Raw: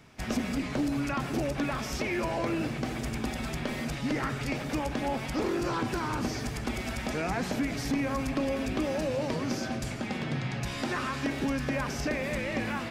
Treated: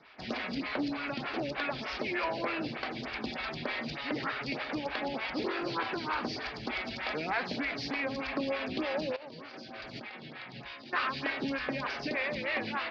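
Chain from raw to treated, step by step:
elliptic low-pass filter 4,600 Hz, stop band 50 dB
spectral tilt +3 dB per octave
0:09.16–0:10.93: compressor whose output falls as the input rises −45 dBFS, ratio −1
phaser with staggered stages 3.3 Hz
level +3 dB

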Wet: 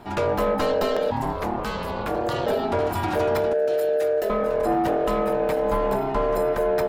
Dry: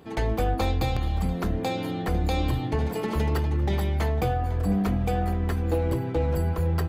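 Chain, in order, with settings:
0:03.53–0:04.30: drawn EQ curve 110 Hz 0 dB, 570 Hz −25 dB, 1,200 Hz −1 dB, 1,900 Hz −11 dB, 10,000 Hz 0 dB
in parallel at −2 dB: brickwall limiter −23 dBFS, peak gain reduction 7.5 dB
on the sum: ring modulation 530 Hz
soft clipping −17.5 dBFS, distortion −19 dB
0:01.10–0:02.45: ring modulation 370 Hz → 100 Hz
level +3.5 dB

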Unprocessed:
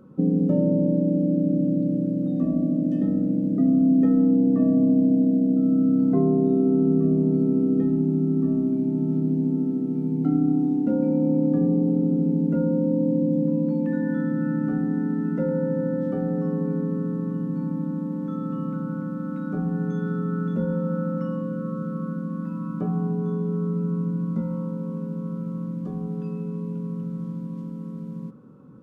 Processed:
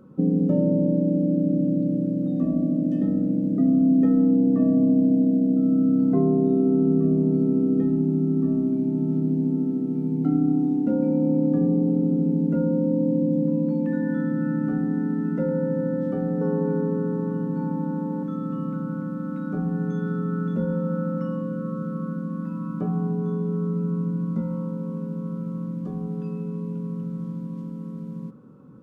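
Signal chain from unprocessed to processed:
0:16.41–0:18.23: hollow resonant body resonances 460/890/1,500 Hz, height 12 dB, ringing for 45 ms

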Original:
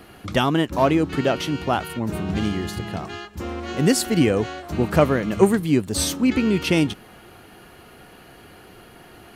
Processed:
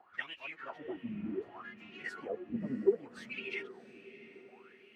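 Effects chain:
time stretch by phase vocoder 0.53×
LFO wah 0.66 Hz 210–2,700 Hz, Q 9.3
feedback delay with all-pass diffusion 684 ms, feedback 46%, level −15.5 dB

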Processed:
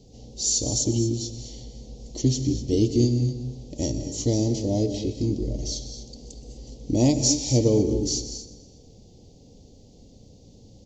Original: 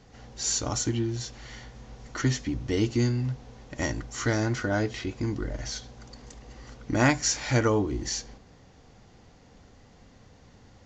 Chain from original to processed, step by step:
Chebyshev band-stop filter 480–4,400 Hz, order 2
repeating echo 123 ms, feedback 59%, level −18 dB
reverb whose tail is shaped and stops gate 270 ms rising, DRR 9 dB
level +4.5 dB

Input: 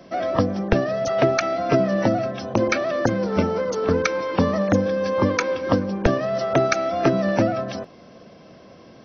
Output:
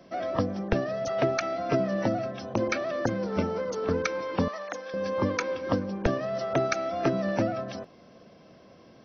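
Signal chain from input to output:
0:04.48–0:04.94: high-pass filter 870 Hz 12 dB per octave
level −7 dB

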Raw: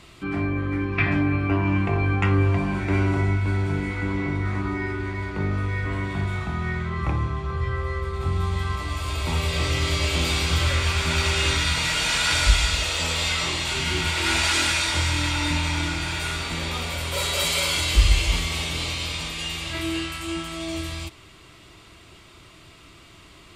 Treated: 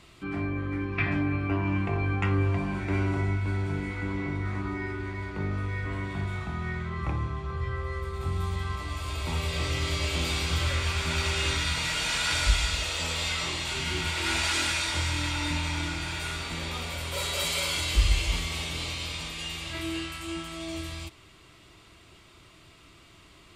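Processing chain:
0:07.92–0:08.56: high-shelf EQ 10,000 Hz +10 dB
level −5.5 dB

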